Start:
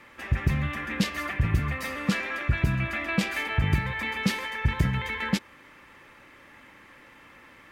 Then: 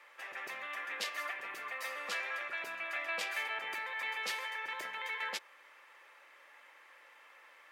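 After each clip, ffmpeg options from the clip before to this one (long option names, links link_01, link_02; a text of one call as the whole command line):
ffmpeg -i in.wav -af "highpass=frequency=510:width=0.5412,highpass=frequency=510:width=1.3066,volume=-6.5dB" out.wav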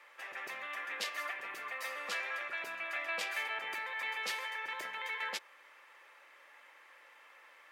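ffmpeg -i in.wav -af anull out.wav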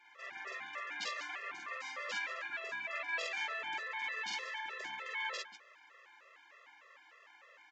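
ffmpeg -i in.wav -af "aecho=1:1:46.65|189.5:1|0.251,aresample=16000,aresample=44100,afftfilt=real='re*gt(sin(2*PI*3.3*pts/sr)*(1-2*mod(floor(b*sr/1024/350),2)),0)':imag='im*gt(sin(2*PI*3.3*pts/sr)*(1-2*mod(floor(b*sr/1024/350),2)),0)':win_size=1024:overlap=0.75,volume=-1dB" out.wav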